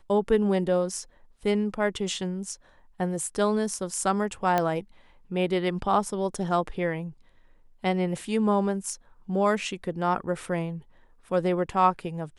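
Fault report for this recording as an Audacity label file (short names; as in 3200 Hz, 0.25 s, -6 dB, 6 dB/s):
4.580000	4.580000	pop -11 dBFS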